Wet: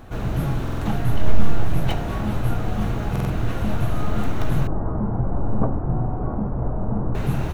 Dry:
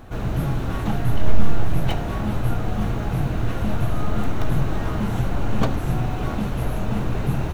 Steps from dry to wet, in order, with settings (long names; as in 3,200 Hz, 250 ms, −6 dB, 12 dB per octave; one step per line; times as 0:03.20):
0:04.67–0:07.15: low-pass filter 1,100 Hz 24 dB per octave
buffer that repeats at 0:00.63/0:03.11, samples 2,048, times 3